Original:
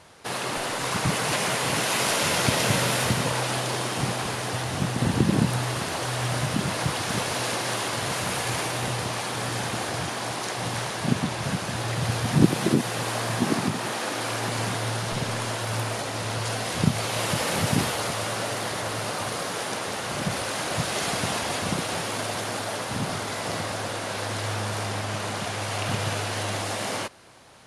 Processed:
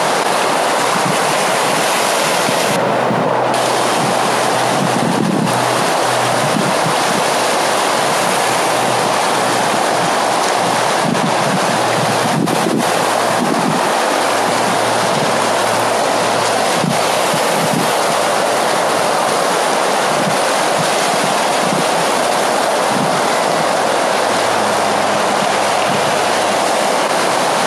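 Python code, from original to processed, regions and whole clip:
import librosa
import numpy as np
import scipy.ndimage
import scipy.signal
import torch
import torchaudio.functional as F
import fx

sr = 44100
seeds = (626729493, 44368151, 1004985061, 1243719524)

y = fx.chain(x, sr, fx.lowpass(hz=1100.0, slope=6),
    fx.quant_companded(bits=8), at=(2.76, 3.54))
y = scipy.signal.sosfilt(scipy.signal.butter(6, 150.0, 'highpass', fs=sr, output='sos'), y)
y = fx.peak_eq(y, sr, hz=740.0, db=7.5, octaves=1.6)
y = fx.env_flatten(y, sr, amount_pct=100)
y = y * 10.0 ** (-3.0 / 20.0)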